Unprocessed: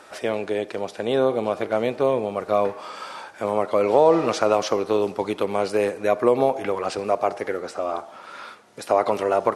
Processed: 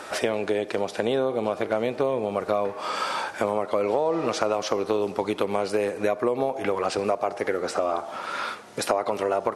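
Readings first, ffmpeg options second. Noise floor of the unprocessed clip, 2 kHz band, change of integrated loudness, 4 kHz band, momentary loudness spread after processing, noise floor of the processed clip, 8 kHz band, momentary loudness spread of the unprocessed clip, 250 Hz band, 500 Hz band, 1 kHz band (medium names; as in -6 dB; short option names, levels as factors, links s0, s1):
-44 dBFS, +1.0 dB, -3.5 dB, +1.0 dB, 4 LU, -39 dBFS, +1.5 dB, 15 LU, -2.5 dB, -3.5 dB, -3.0 dB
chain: -af "acompressor=threshold=0.0316:ratio=6,volume=2.66"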